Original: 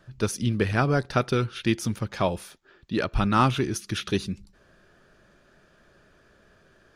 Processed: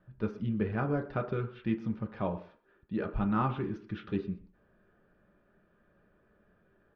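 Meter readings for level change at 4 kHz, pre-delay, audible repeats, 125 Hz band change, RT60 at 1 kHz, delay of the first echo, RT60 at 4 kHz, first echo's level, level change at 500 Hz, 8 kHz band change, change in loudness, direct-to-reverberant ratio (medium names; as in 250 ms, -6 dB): -22.0 dB, 3 ms, 1, -8.0 dB, 0.50 s, 124 ms, 0.40 s, -21.0 dB, -8.0 dB, under -40 dB, -8.0 dB, 3.5 dB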